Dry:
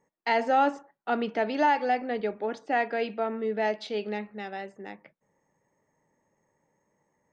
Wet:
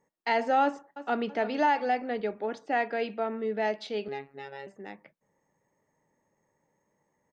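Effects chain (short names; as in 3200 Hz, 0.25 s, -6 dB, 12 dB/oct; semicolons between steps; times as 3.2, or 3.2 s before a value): 0.63–1.27 echo throw 0.33 s, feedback 40%, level -14 dB; 4.08–4.67 robotiser 138 Hz; gain -1.5 dB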